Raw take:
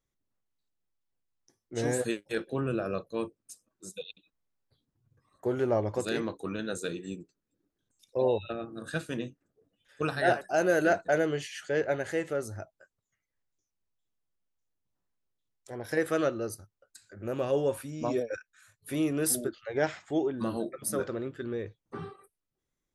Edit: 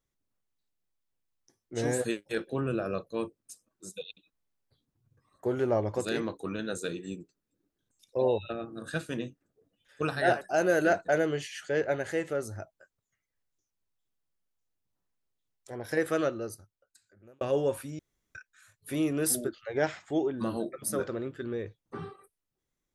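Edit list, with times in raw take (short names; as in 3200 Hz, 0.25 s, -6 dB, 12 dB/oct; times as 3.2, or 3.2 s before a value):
16.12–17.41 fade out
17.99–18.35 room tone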